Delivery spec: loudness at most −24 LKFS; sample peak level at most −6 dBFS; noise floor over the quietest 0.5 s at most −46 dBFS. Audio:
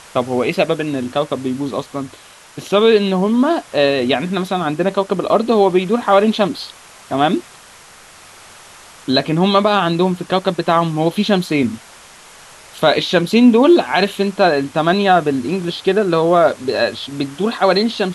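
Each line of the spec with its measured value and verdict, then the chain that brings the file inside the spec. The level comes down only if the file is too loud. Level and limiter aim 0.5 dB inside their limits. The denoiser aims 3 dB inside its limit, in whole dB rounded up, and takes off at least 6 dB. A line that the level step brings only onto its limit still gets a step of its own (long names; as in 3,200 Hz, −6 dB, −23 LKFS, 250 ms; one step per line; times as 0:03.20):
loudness −16.0 LKFS: out of spec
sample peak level −2.0 dBFS: out of spec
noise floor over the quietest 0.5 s −42 dBFS: out of spec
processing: level −8.5 dB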